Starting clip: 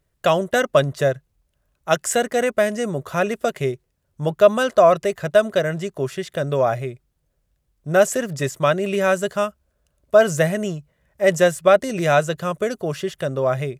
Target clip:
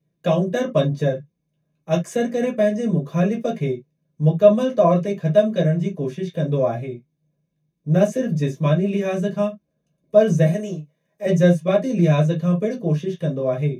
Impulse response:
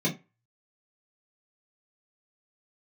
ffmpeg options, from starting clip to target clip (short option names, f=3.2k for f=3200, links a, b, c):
-filter_complex "[0:a]asettb=1/sr,asplit=3[a][b][c];[a]atrim=end=10.464[d];[b]atrim=start=10.46:end=11.26,asetpts=PTS-STARTPTS,afade=t=in:d=0.004:c=qsin,afade=t=out:st=0.796:d=0.004:c=qsin,bass=f=250:g=-13,treble=f=4k:g=6[e];[c]atrim=start=11.256[f];[d][e]acrossfade=d=0.004:c1=hsin:c2=qsin[g];[g][f]acrossfade=d=0.004:c1=qsin:c2=hsin[h];[1:a]atrim=start_sample=2205,atrim=end_sample=3528[i];[h][i]afir=irnorm=-1:irlink=0,volume=-15dB"